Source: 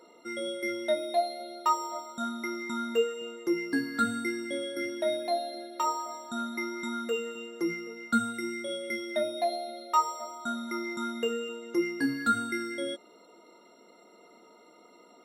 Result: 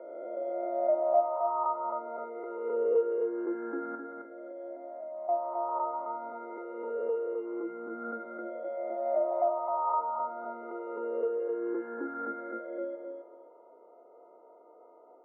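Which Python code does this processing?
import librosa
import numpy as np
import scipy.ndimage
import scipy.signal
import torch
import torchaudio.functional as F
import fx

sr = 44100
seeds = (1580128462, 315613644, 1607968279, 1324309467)

p1 = fx.spec_swells(x, sr, rise_s=2.02)
p2 = scipy.signal.sosfilt(scipy.signal.butter(4, 1000.0, 'lowpass', fs=sr, output='sos'), p1)
p3 = fx.level_steps(p2, sr, step_db=20, at=(3.95, 5.29))
p4 = fx.ladder_highpass(p3, sr, hz=390.0, resonance_pct=30)
p5 = p4 + fx.echo_feedback(p4, sr, ms=264, feedback_pct=22, wet_db=-5.5, dry=0)
y = p5 * 10.0 ** (3.5 / 20.0)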